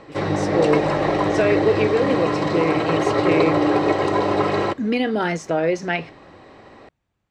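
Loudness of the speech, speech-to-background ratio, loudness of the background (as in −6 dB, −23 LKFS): −23.0 LKFS, −2.5 dB, −20.5 LKFS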